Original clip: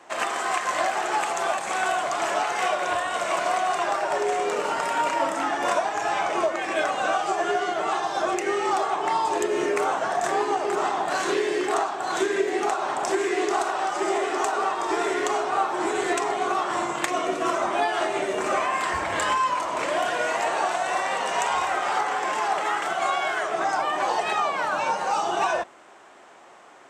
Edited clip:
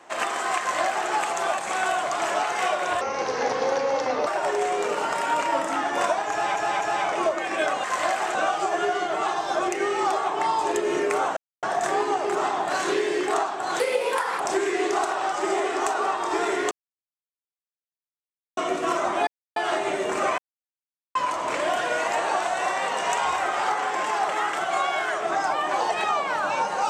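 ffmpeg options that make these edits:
-filter_complex "[0:a]asplit=15[s0][s1][s2][s3][s4][s5][s6][s7][s8][s9][s10][s11][s12][s13][s14];[s0]atrim=end=3.014[s15];[s1]atrim=start=3.01:end=3.94,asetpts=PTS-STARTPTS,asetrate=32634,aresample=44100[s16];[s2]atrim=start=3.936:end=6.232[s17];[s3]atrim=start=5.978:end=6.232[s18];[s4]atrim=start=5.978:end=7.012[s19];[s5]atrim=start=0.588:end=1.102[s20];[s6]atrim=start=7.008:end=10.03,asetpts=PTS-STARTPTS,afade=t=out:st=3.018:d=0.004:c=hsin,apad=pad_dur=0.26[s21];[s7]atrim=start=10.03:end=12.204,asetpts=PTS-STARTPTS,afade=t=in:d=0.004:c=hsin[s22];[s8]atrim=start=12.2:end=12.98,asetpts=PTS-STARTPTS,asetrate=56889,aresample=44100,atrim=end_sample=26665,asetpts=PTS-STARTPTS[s23];[s9]atrim=start=12.976:end=15.29,asetpts=PTS-STARTPTS,afade=t=out:st=2.31:d=0.004:c=hsin[s24];[s10]atrim=start=15.29:end=17.15,asetpts=PTS-STARTPTS,volume=0[s25];[s11]atrim=start=17.15:end=17.85,asetpts=PTS-STARTPTS,afade=t=in:d=0.004:c=hsin,afade=t=out:st=0.696:d=0.004:c=hsin,apad=pad_dur=0.29[s26];[s12]atrim=start=17.85:end=18.67,asetpts=PTS-STARTPTS,afade=t=in:d=0.004:c=hsin,afade=t=out:st=0.816:d=0.004:c=hsin[s27];[s13]atrim=start=18.67:end=19.44,asetpts=PTS-STARTPTS,volume=0[s28];[s14]atrim=start=19.44,asetpts=PTS-STARTPTS,afade=t=in:d=0.004:c=hsin[s29];[s15][s16]acrossfade=d=0.004:c1=hsin:c2=hsin[s30];[s30][s17]acrossfade=d=0.004:c1=hsin:c2=hsin[s31];[s31][s18]acrossfade=d=0.004:c1=hsin:c2=hsin[s32];[s32][s19]acrossfade=d=0.004:c1=hsin:c2=hsin[s33];[s33][s20]acrossfade=d=0.004:c1=hsin:c2=hsin[s34];[s21][s22]concat=n=2:v=0:a=1[s35];[s34][s35]acrossfade=d=0.004:c1=hsin:c2=hsin[s36];[s36][s23]acrossfade=d=0.004:c1=hsin:c2=hsin[s37];[s24][s25][s26][s27][s28][s29]concat=n=6:v=0:a=1[s38];[s37][s38]acrossfade=d=0.004:c1=hsin:c2=hsin"

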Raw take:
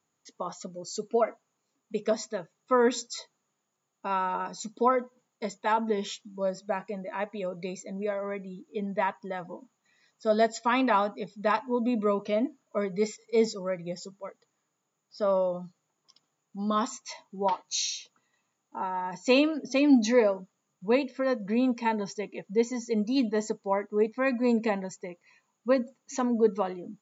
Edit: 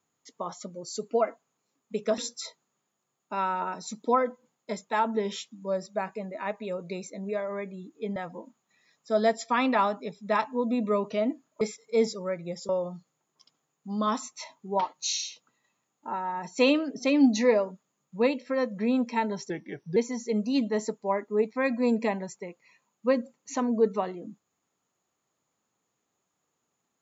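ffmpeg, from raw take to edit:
-filter_complex "[0:a]asplit=7[s0][s1][s2][s3][s4][s5][s6];[s0]atrim=end=2.182[s7];[s1]atrim=start=2.908:end=8.892[s8];[s2]atrim=start=9.308:end=12.762[s9];[s3]atrim=start=13.008:end=14.092[s10];[s4]atrim=start=15.378:end=22.194[s11];[s5]atrim=start=22.19:end=22.58,asetpts=PTS-STARTPTS,asetrate=37044,aresample=44100[s12];[s6]atrim=start=22.576[s13];[s7][s8]acrossfade=d=0.004:c1=hsin:c2=hsin[s14];[s14][s9]acrossfade=d=0.004:c1=hsin:c2=hsin[s15];[s15][s10]acrossfade=d=0.004:c1=hsin:c2=hsin[s16];[s16][s11]acrossfade=d=0.004:c1=hsin:c2=hsin[s17];[s17][s12]acrossfade=d=0.004:c1=hsin:c2=hsin[s18];[s18][s13]acrossfade=d=0.004:c1=hsin:c2=hsin"

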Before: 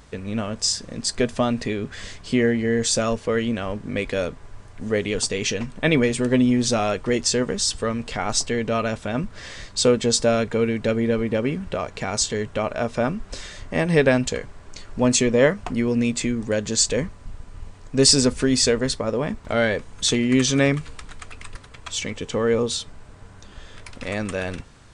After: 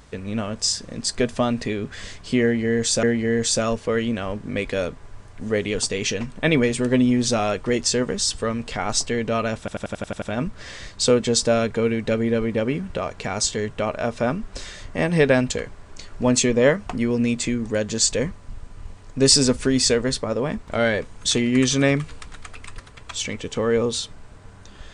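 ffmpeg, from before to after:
-filter_complex "[0:a]asplit=9[s0][s1][s2][s3][s4][s5][s6][s7][s8];[s0]atrim=end=3.032[s9];[s1]atrim=start=2.428:end=9.082[s10];[s2]atrim=start=8.988:end=9.082[s11];[s3]atrim=start=8.988:end=9.082[s12];[s4]atrim=start=8.988:end=9.082[s13];[s5]atrim=start=8.988:end=9.082[s14];[s6]atrim=start=8.988:end=9.082[s15];[s7]atrim=start=8.988:end=9.082[s16];[s8]atrim=start=8.988[s17];[s9][s10]acrossfade=d=0.004:c1=hsin:c2=hsin[s18];[s18][s11]acrossfade=d=0.004:c1=hsin:c2=hsin[s19];[s19][s12]acrossfade=d=0.004:c1=hsin:c2=hsin[s20];[s20][s13]acrossfade=d=0.004:c1=hsin:c2=hsin[s21];[s21][s14]acrossfade=d=0.004:c1=hsin:c2=hsin[s22];[s22][s15]acrossfade=d=0.004:c1=hsin:c2=hsin[s23];[s23][s16]acrossfade=d=0.004:c1=hsin:c2=hsin[s24];[s24][s17]acrossfade=d=0.004:c1=hsin:c2=hsin"

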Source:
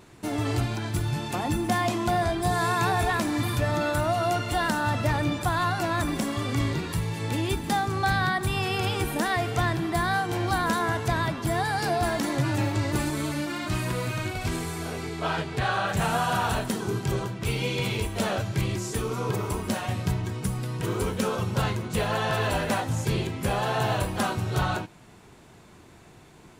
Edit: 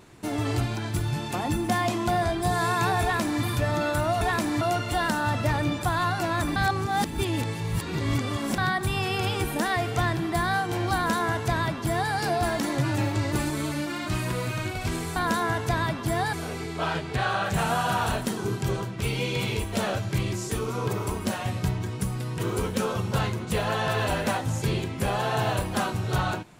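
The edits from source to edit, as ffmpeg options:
-filter_complex "[0:a]asplit=7[s0][s1][s2][s3][s4][s5][s6];[s0]atrim=end=4.212[s7];[s1]atrim=start=3.018:end=3.422[s8];[s2]atrim=start=4.208:end=6.162[s9];[s3]atrim=start=6.158:end=8.182,asetpts=PTS-STARTPTS,areverse[s10];[s4]atrim=start=8.178:end=14.762[s11];[s5]atrim=start=10.548:end=11.722[s12];[s6]atrim=start=14.758[s13];[s7][s8]acrossfade=d=0.004:c1=hsin:c2=hsin[s14];[s14][s9]acrossfade=d=0.004:c1=hsin:c2=hsin[s15];[s15][s10]acrossfade=d=0.004:c1=hsin:c2=hsin[s16];[s16][s11]acrossfade=d=0.004:c1=hsin:c2=hsin[s17];[s17][s12]acrossfade=d=0.004:c1=hsin:c2=hsin[s18];[s18][s13]acrossfade=d=0.004:c1=hsin:c2=hsin"

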